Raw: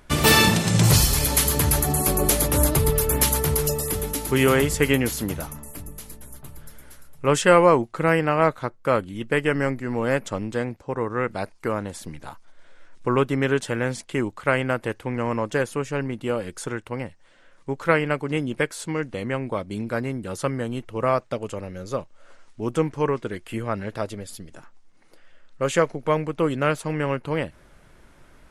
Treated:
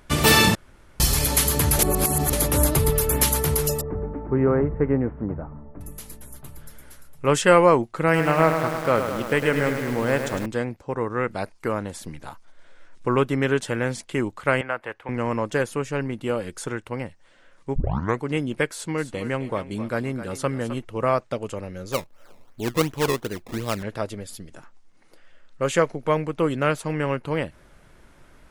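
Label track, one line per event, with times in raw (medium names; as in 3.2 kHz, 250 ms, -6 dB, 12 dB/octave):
0.550000	1.000000	room tone
1.790000	2.330000	reverse
3.810000	5.810000	Gaussian low-pass sigma 6.8 samples
8.030000	10.460000	bit-crushed delay 105 ms, feedback 80%, word length 6-bit, level -7 dB
14.610000	15.090000	three-band isolator lows -15 dB, under 560 Hz, highs -16 dB, over 3 kHz
17.760000	17.760000	tape start 0.45 s
18.710000	20.790000	thinning echo 260 ms, feedback 24%, level -10.5 dB
21.920000	23.830000	decimation with a swept rate 20× 2.7 Hz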